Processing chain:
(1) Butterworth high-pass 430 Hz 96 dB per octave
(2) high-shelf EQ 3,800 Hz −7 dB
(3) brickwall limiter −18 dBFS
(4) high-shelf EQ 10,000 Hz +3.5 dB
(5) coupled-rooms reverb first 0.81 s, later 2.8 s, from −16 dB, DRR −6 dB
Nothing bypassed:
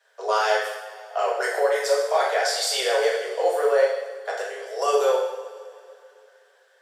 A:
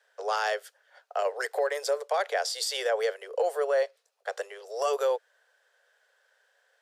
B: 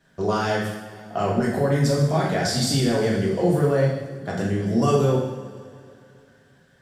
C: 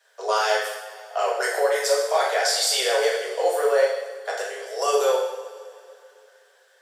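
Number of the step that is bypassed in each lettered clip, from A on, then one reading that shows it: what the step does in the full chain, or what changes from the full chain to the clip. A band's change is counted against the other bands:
5, change in momentary loudness spread −2 LU
1, 2 kHz band −2.0 dB
2, 8 kHz band +4.0 dB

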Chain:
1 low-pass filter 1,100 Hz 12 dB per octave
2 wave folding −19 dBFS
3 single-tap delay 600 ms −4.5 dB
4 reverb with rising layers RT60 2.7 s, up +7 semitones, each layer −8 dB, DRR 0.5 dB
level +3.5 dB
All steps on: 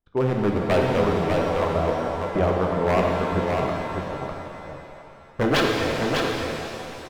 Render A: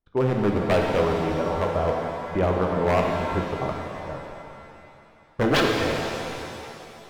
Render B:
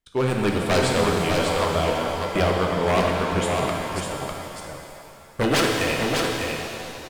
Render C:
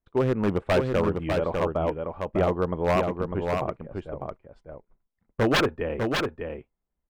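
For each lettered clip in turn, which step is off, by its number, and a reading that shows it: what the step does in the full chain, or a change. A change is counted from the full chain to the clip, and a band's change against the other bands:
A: 3, change in momentary loudness spread +2 LU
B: 1, 4 kHz band +4.5 dB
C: 4, 1 kHz band −1.5 dB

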